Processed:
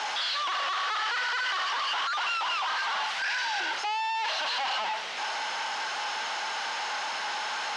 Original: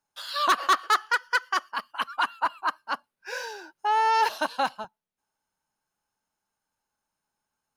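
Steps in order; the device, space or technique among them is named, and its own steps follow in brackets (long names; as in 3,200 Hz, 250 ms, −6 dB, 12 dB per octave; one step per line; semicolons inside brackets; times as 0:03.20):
0:02.15–0:03.60: Chebyshev band-stop filter 210–690 Hz, order 3
home computer beeper (sign of each sample alone; loudspeaker in its box 680–5,200 Hz, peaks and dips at 770 Hz +3 dB, 2,000 Hz +4 dB, 3,000 Hz +4 dB)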